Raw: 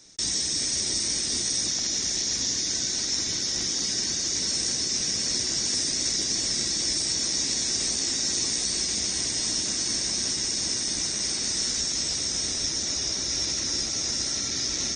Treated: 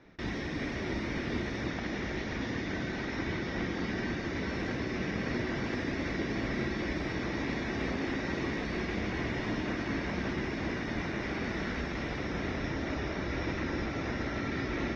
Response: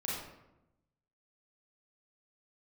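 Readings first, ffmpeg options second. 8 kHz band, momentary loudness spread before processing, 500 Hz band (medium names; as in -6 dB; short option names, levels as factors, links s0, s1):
-32.0 dB, 2 LU, +5.5 dB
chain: -filter_complex "[0:a]lowpass=f=2200:w=0.5412,lowpass=f=2200:w=1.3066,asplit=2[s0][s1];[1:a]atrim=start_sample=2205,asetrate=48510,aresample=44100[s2];[s1][s2]afir=irnorm=-1:irlink=0,volume=0.335[s3];[s0][s3]amix=inputs=2:normalize=0,volume=1.5"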